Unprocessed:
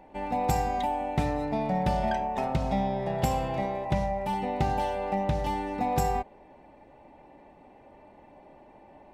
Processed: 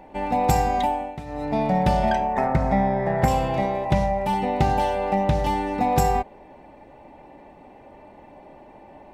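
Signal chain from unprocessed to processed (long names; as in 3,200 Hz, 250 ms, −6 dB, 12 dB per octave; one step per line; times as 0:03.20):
0:00.86–0:01.59: duck −16 dB, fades 0.33 s
0:02.33–0:03.28: high shelf with overshoot 2,400 Hz −7 dB, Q 3
level +6.5 dB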